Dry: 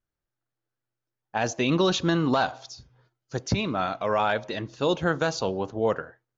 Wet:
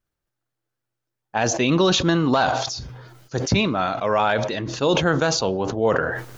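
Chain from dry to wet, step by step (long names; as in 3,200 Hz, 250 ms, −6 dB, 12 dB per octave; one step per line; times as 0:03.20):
level that may fall only so fast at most 40 dB per second
level +4 dB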